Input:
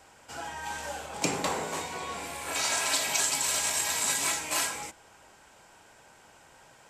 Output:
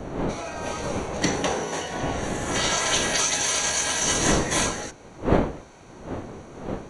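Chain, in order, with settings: wind noise 610 Hz -35 dBFS; formant shift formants -4 st; Butterworth band-stop 5.1 kHz, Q 6.1; trim +5 dB

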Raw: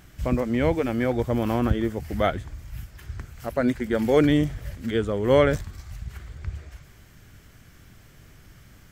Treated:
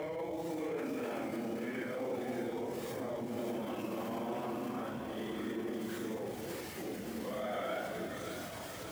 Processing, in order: added noise pink -46 dBFS; Paulstretch 4.7×, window 0.05 s, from 0.65 s; peak limiter -31 dBFS, peak gain reduction 22.5 dB; high-pass 240 Hz 12 dB/octave; echo whose repeats swap between lows and highs 290 ms, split 950 Hz, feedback 76%, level -4 dB

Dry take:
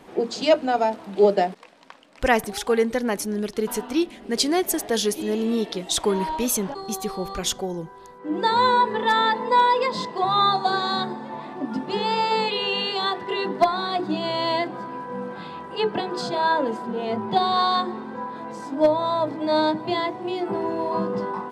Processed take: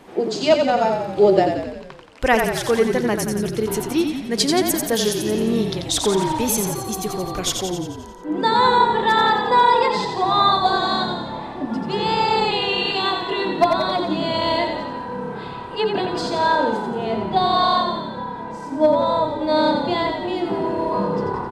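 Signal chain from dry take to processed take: 17.25–19.60 s: harmonic-percussive split percussive -8 dB; frequency-shifting echo 88 ms, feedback 60%, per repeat -33 Hz, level -5.5 dB; trim +2 dB

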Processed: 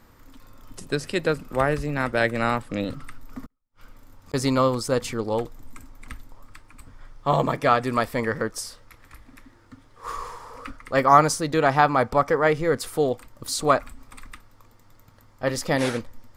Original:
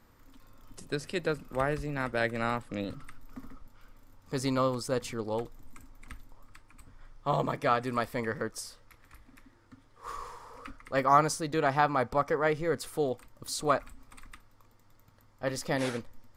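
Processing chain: 3.45–4.34 s: inverted gate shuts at -40 dBFS, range -40 dB; trim +7.5 dB

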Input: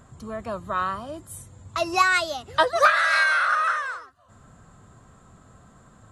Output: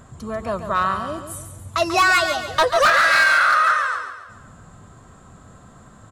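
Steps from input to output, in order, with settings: overload inside the chain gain 17 dB; on a send: feedback delay 140 ms, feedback 43%, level -9 dB; on the sum: trim +5.5 dB

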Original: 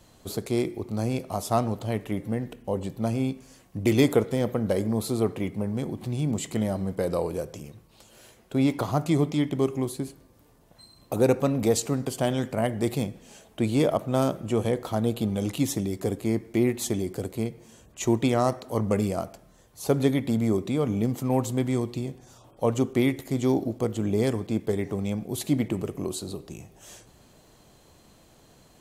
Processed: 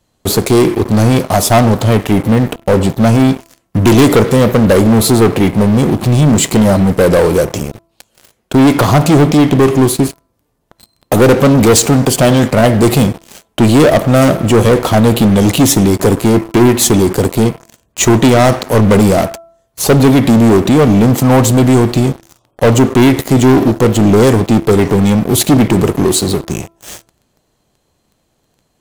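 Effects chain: waveshaping leveller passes 5; de-hum 334.1 Hz, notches 4; trim +4 dB

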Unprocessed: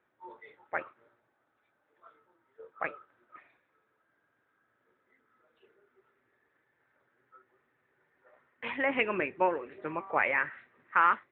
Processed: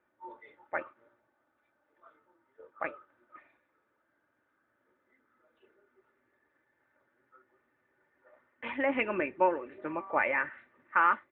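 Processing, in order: treble shelf 3.5 kHz -10 dB; comb 3.4 ms, depth 39%

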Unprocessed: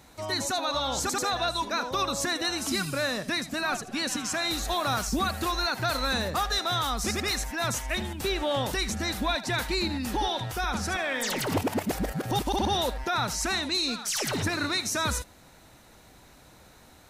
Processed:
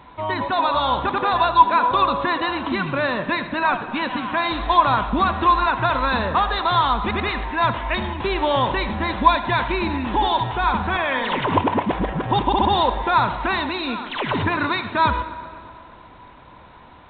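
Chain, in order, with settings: peaking EQ 1 kHz +14.5 dB 0.25 oct; tape echo 118 ms, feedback 82%, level -15 dB, low-pass 2.4 kHz; on a send at -14.5 dB: reverberation RT60 2.1 s, pre-delay 39 ms; on the sum: trim +6 dB; A-law 64 kbps 8 kHz

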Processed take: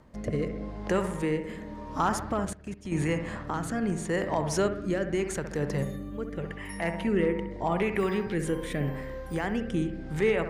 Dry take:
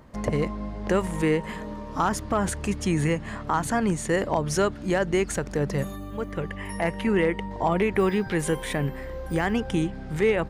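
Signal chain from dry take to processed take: bucket-brigade echo 65 ms, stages 1024, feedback 58%, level -8.5 dB; rotary cabinet horn 0.85 Hz; 2.45–2.92 s: level held to a coarse grid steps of 16 dB; trim -2.5 dB

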